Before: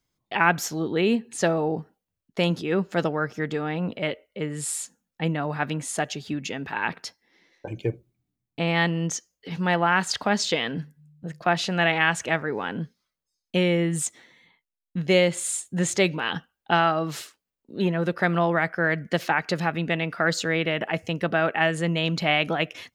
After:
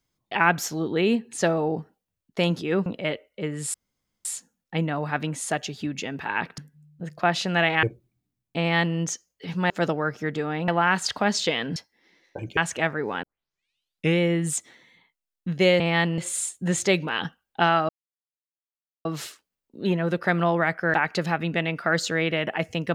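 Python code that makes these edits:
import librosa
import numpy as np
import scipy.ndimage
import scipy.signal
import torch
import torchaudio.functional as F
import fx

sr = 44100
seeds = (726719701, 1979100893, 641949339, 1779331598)

y = fx.edit(x, sr, fx.move(start_s=2.86, length_s=0.98, to_s=9.73),
    fx.insert_room_tone(at_s=4.72, length_s=0.51),
    fx.swap(start_s=7.05, length_s=0.81, other_s=10.81, other_length_s=1.25),
    fx.duplicate(start_s=8.62, length_s=0.38, to_s=15.29),
    fx.tape_start(start_s=12.72, length_s=0.96),
    fx.insert_silence(at_s=17.0, length_s=1.16),
    fx.cut(start_s=18.89, length_s=0.39), tone=tone)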